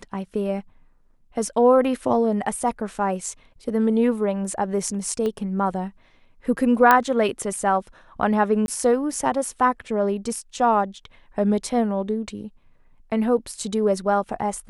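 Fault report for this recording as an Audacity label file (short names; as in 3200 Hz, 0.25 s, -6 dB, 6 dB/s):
5.260000	5.260000	pop -16 dBFS
6.910000	6.910000	pop -3 dBFS
8.660000	8.680000	gap 21 ms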